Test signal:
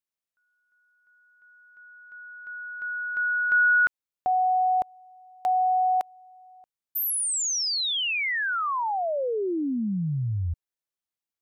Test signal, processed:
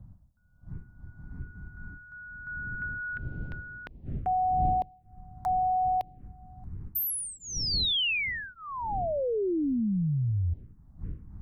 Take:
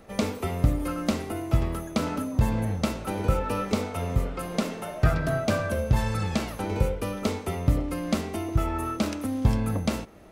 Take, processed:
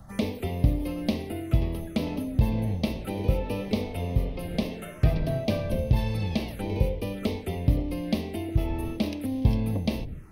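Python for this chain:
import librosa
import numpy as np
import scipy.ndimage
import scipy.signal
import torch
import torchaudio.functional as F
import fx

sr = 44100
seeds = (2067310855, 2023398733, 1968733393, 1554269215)

y = fx.dmg_wind(x, sr, seeds[0], corner_hz=110.0, level_db=-41.0)
y = fx.env_phaser(y, sr, low_hz=370.0, high_hz=1400.0, full_db=-26.0)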